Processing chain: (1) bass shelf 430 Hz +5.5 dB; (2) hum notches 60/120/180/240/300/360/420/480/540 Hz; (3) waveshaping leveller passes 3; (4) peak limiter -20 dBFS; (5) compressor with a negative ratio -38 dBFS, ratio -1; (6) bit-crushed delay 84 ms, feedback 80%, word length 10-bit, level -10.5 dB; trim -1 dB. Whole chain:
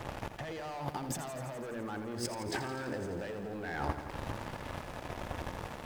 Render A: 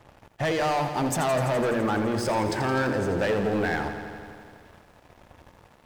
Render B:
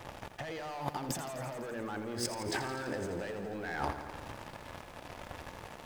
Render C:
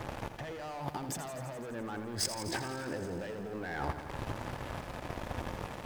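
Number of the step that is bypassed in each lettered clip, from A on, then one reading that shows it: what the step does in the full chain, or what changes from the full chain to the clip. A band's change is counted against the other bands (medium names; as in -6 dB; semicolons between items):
5, crest factor change -8.5 dB; 1, 125 Hz band -3.5 dB; 2, 8 kHz band +4.5 dB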